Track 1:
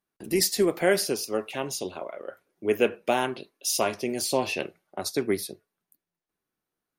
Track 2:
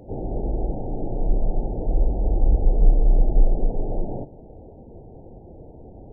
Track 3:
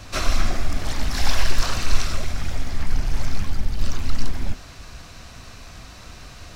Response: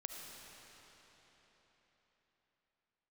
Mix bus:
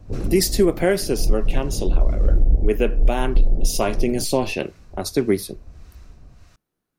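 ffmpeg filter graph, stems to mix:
-filter_complex "[0:a]volume=2.5dB,asplit=2[a][b];[1:a]afwtdn=0.0562,volume=-4dB[c];[2:a]equalizer=f=3.6k:w=1.5:g=-4,acompressor=threshold=-25dB:ratio=6,acrossover=split=860[d][e];[d]aeval=exprs='val(0)*(1-0.7/2+0.7/2*cos(2*PI*1.6*n/s))':c=same[f];[e]aeval=exprs='val(0)*(1-0.7/2-0.7/2*cos(2*PI*1.6*n/s))':c=same[g];[f][g]amix=inputs=2:normalize=0,volume=-11.5dB[h];[b]apad=whole_len=274356[i];[c][i]sidechaincompress=threshold=-29dB:ratio=8:attack=44:release=210[j];[a][j][h]amix=inputs=3:normalize=0,lowshelf=f=340:g=10,alimiter=limit=-7dB:level=0:latency=1:release=282"

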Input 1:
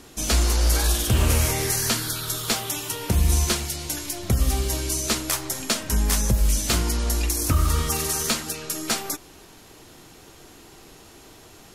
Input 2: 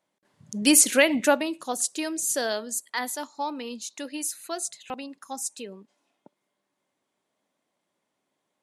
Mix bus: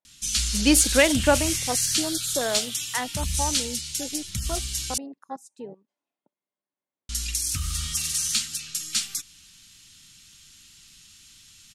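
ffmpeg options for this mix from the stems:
-filter_complex "[0:a]firequalizer=gain_entry='entry(190,0);entry(380,-21);entry(570,-25);entry(1300,-3);entry(3000,11);entry(8700,12);entry(14000,-2)':delay=0.05:min_phase=1,adelay=50,volume=-10dB,asplit=3[a][b][c];[a]atrim=end=4.98,asetpts=PTS-STARTPTS,afade=t=out:st=4.976:d=0.004:c=hsin[d];[b]atrim=start=4.98:end=7.09,asetpts=PTS-STARTPTS,volume=0[e];[c]atrim=start=7.09,asetpts=PTS-STARTPTS,afade=t=in:d=0.004:c=hsin[f];[d][e][f]concat=n=3:v=0:a=1[g];[1:a]afwtdn=0.0224,highshelf=f=4.9k:g=-5,volume=1dB[h];[g][h]amix=inputs=2:normalize=0"

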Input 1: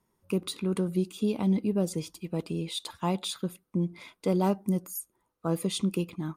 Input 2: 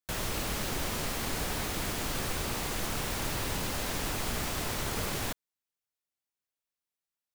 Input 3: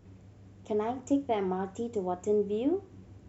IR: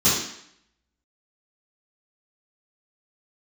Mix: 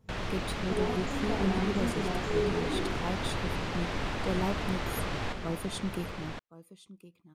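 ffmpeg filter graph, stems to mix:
-filter_complex "[0:a]volume=-6.5dB,asplit=2[a][b];[b]volume=-17dB[c];[1:a]lowpass=3.3k,volume=0dB,asplit=2[d][e];[e]volume=-5.5dB[f];[2:a]volume=-10.5dB,asplit=2[g][h];[h]volume=-14.5dB[i];[3:a]atrim=start_sample=2205[j];[i][j]afir=irnorm=-1:irlink=0[k];[c][f]amix=inputs=2:normalize=0,aecho=0:1:1065:1[l];[a][d][g][k][l]amix=inputs=5:normalize=0"

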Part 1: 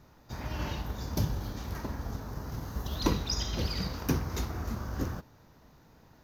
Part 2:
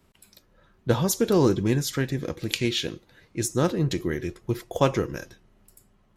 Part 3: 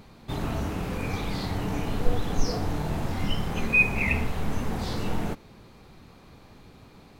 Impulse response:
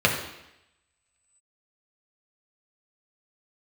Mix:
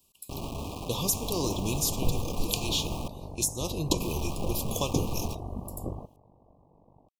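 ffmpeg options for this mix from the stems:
-filter_complex "[0:a]aeval=exprs='val(0)*sin(2*PI*24*n/s)':c=same,lowpass=f=730:t=q:w=1.8,adelay=850,volume=0.5dB[a];[1:a]dynaudnorm=f=220:g=9:m=11.5dB,crystalizer=i=9:c=0,acompressor=threshold=-13dB:ratio=6,volume=-13dB[b];[2:a]lowpass=1.3k,bandreject=f=60:t=h:w=6,bandreject=f=120:t=h:w=6,bandreject=f=180:t=h:w=6,bandreject=f=240:t=h:w=6,bandreject=f=300:t=h:w=6,acrusher=bits=4:mix=0:aa=0.000001,volume=-7dB,asplit=3[c][d][e];[c]atrim=end=3.08,asetpts=PTS-STARTPTS,afade=t=out:st=3.076:d=0.004:c=hsin[f];[d]atrim=start=3.08:end=4,asetpts=PTS-STARTPTS,volume=0[g];[e]atrim=start=4,asetpts=PTS-STARTPTS,afade=t=in:d=0.004:c=hsin[h];[f][g][h]concat=n=3:v=0:a=1[i];[a][b][i]amix=inputs=3:normalize=0,asuperstop=centerf=1700:order=20:qfactor=1.4"

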